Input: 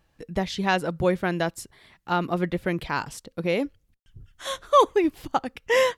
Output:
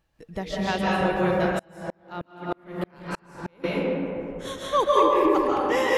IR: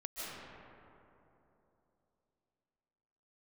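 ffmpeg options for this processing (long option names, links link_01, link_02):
-filter_complex "[1:a]atrim=start_sample=2205[link_01];[0:a][link_01]afir=irnorm=-1:irlink=0,asettb=1/sr,asplit=3[link_02][link_03][link_04];[link_02]atrim=end=1.594[link_05];[link_03]atrim=start=1.59:end=3.64,asetpts=PTS-STARTPTS,afade=type=in:duration=0.004:curve=qsin,afade=type=out:start_time=2.046:duration=0.004:curve=qsin,aeval=exprs='val(0)*pow(10,-38*if(lt(mod(-3.2*n/s,1),2*abs(-3.2)/1000),1-mod(-3.2*n/s,1)/(2*abs(-3.2)/1000),(mod(-3.2*n/s,1)-2*abs(-3.2)/1000)/(1-2*abs(-3.2)/1000))/20)':channel_layout=same[link_06];[link_04]atrim=start=3.636[link_07];[link_05][link_06]acrossfade=duration=0.004:curve1=hsin:curve2=qsin[link_08];[link_08][link_07]acrossfade=duration=0.004:curve1=qsin:curve2=hsin"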